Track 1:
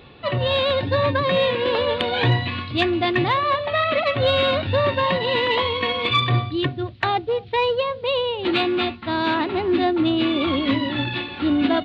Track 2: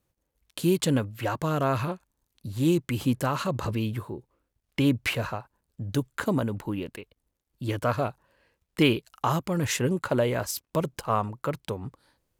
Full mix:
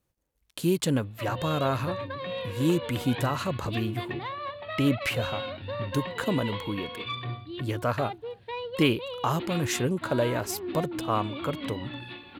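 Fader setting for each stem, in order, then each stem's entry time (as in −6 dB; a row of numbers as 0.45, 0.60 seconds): −15.0, −1.5 decibels; 0.95, 0.00 seconds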